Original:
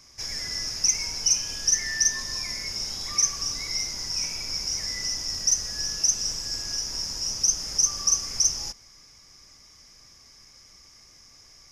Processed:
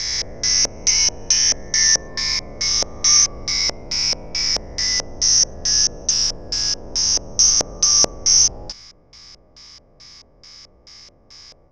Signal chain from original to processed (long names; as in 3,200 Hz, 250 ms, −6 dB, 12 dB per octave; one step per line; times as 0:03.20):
peak hold with a rise ahead of every peak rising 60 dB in 2.74 s
auto-filter low-pass square 2.3 Hz 580–4,300 Hz
level +4.5 dB